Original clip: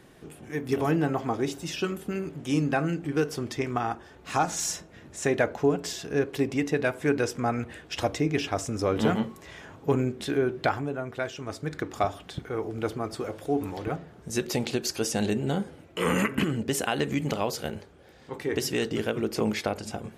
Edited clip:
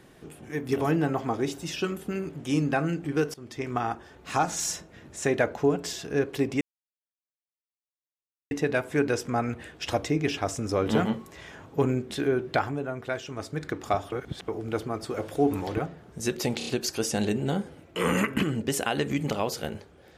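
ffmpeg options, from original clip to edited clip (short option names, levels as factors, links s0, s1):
-filter_complex "[0:a]asplit=10[s0][s1][s2][s3][s4][s5][s6][s7][s8][s9];[s0]atrim=end=3.34,asetpts=PTS-STARTPTS,afade=t=out:st=3.336:d=0.004:c=hsin:silence=0.0944061[s10];[s1]atrim=start=3.34:end=6.61,asetpts=PTS-STARTPTS,afade=t=in:d=0.44:silence=0.0944061,afade=t=out:st=3.266:d=0.004:c=hsin,apad=pad_dur=1.9[s11];[s2]atrim=start=6.61:end=12.222,asetpts=PTS-STARTPTS,afade=t=in:d=0.004:c=hsin[s12];[s3]atrim=start=12.218:end=12.582,asetpts=PTS-STARTPTS,areverse[s13];[s4]atrim=start=12.578:end=13.272[s14];[s5]atrim=start=13.268:end=13.892,asetpts=PTS-STARTPTS,volume=1.5[s15];[s6]atrim=start=13.888:end=14.712[s16];[s7]atrim=start=14.678:end=14.712[s17];[s8]atrim=start=14.678:end=14.712[s18];[s9]atrim=start=14.678[s19];[s10][s11][s12]concat=n=3:v=0:a=1[s20];[s20][s13]acrossfade=d=0.004:c1=hsin:c2=hsin[s21];[s21][s14]acrossfade=d=0.004:c1=hsin:c2=hsin[s22];[s22][s15]acrossfade=d=0.004:c1=hsin:c2=hsin[s23];[s23][s16]acrossfade=d=0.004:c1=hsin:c2=hsin[s24];[s24][s17]acrossfade=d=0.004:c1=hsin:c2=hsin[s25];[s25][s18]acrossfade=d=0.004:c1=hsin:c2=hsin[s26];[s26][s19]acrossfade=d=0.004:c1=hsin:c2=hsin"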